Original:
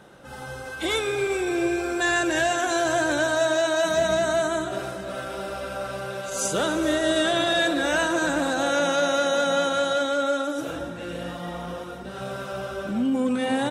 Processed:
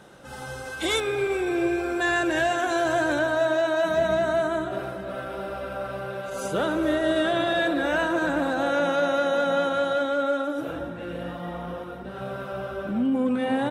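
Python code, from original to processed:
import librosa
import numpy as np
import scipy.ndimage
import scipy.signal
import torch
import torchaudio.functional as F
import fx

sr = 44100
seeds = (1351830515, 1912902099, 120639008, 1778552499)

y = fx.peak_eq(x, sr, hz=7000.0, db=fx.steps((0.0, 2.5), (1.0, -9.0), (3.19, -15.0)), octaves=1.6)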